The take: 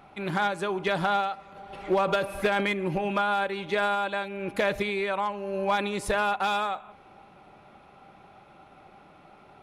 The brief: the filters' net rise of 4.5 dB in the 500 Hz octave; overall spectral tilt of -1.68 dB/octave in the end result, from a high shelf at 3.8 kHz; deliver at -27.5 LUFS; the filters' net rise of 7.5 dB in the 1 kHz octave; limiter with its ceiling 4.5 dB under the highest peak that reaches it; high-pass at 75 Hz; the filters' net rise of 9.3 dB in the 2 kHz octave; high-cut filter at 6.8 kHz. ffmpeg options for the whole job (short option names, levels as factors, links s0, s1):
-af "highpass=75,lowpass=6800,equalizer=f=500:t=o:g=3.5,equalizer=f=1000:t=o:g=6,equalizer=f=2000:t=o:g=9,highshelf=f=3800:g=4.5,volume=0.562,alimiter=limit=0.168:level=0:latency=1"